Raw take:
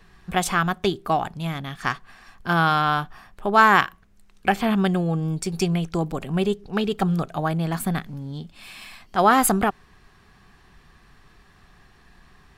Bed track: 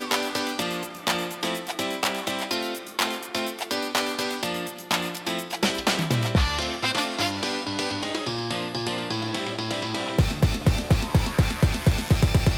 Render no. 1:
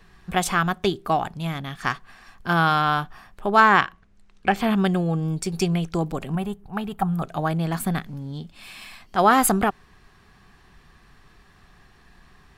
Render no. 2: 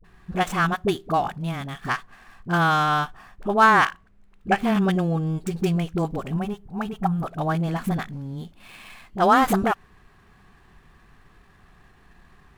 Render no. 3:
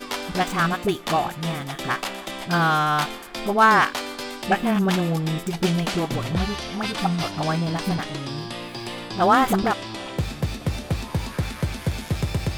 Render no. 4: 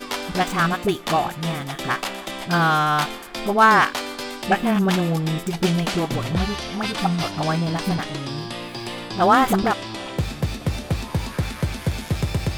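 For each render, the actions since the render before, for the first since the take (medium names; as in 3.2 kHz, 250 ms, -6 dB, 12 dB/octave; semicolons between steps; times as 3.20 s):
3.60–4.56 s: distance through air 60 m; 6.35–7.22 s: FFT filter 140 Hz 0 dB, 470 Hz -13 dB, 780 Hz +3 dB, 5.3 kHz -15 dB, 12 kHz +2 dB
median filter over 9 samples; phase dispersion highs, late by 43 ms, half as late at 480 Hz
add bed track -4.5 dB
trim +1.5 dB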